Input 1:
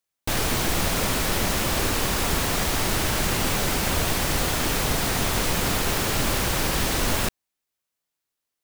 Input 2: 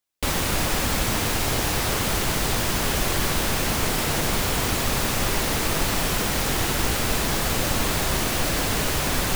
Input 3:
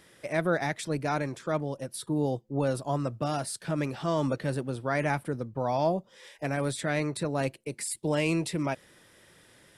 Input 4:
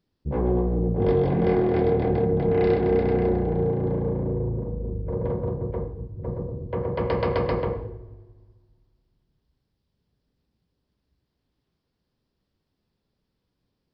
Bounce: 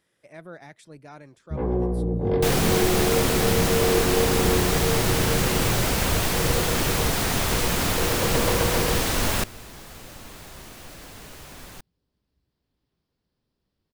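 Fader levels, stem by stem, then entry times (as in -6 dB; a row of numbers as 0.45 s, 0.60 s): 0.0 dB, -19.0 dB, -15.0 dB, -1.5 dB; 2.15 s, 2.45 s, 0.00 s, 1.25 s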